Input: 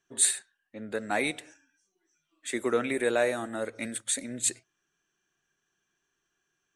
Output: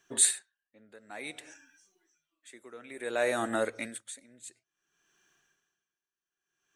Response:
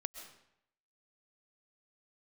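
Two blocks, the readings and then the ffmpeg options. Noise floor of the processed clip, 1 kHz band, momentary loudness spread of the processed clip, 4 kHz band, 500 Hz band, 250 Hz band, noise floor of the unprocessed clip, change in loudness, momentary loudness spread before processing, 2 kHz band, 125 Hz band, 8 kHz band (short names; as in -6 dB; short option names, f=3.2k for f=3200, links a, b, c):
under -85 dBFS, -3.0 dB, 24 LU, -3.0 dB, -5.0 dB, -6.5 dB, -80 dBFS, -1.5 dB, 12 LU, -4.5 dB, -7.0 dB, -2.0 dB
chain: -filter_complex "[0:a]lowshelf=f=370:g=-5.5,asplit=2[a][b];[b]acompressor=threshold=-39dB:ratio=6,volume=1dB[c];[a][c]amix=inputs=2:normalize=0,aeval=exprs='val(0)*pow(10,-25*(0.5-0.5*cos(2*PI*0.57*n/s))/20)':c=same,volume=3dB"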